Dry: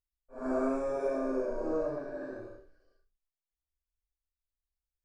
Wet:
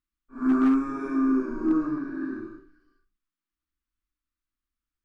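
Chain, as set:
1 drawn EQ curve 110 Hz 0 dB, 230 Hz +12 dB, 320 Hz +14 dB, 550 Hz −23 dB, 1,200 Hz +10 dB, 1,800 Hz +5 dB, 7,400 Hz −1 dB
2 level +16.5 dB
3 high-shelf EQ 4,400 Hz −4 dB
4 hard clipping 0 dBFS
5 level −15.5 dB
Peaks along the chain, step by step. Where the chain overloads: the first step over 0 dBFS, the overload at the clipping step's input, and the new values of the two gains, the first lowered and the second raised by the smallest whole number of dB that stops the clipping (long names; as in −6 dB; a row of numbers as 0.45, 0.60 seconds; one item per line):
−13.0, +3.5, +3.5, 0.0, −15.5 dBFS
step 2, 3.5 dB
step 2 +12.5 dB, step 5 −11.5 dB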